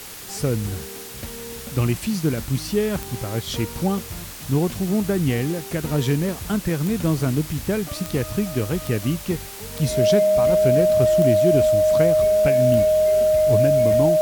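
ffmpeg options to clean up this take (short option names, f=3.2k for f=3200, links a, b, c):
-af "adeclick=t=4,bandreject=f=620:w=30,afwtdn=0.014"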